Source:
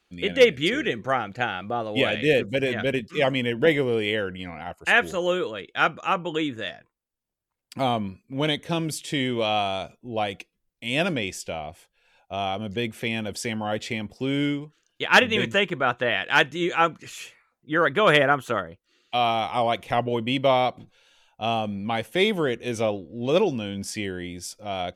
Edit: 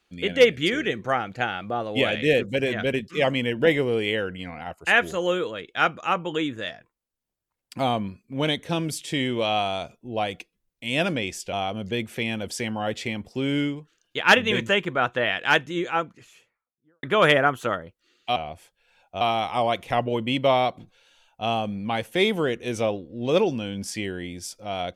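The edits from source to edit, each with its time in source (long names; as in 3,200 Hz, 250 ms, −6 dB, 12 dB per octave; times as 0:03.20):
0:11.53–0:12.38: move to 0:19.21
0:16.20–0:17.88: fade out and dull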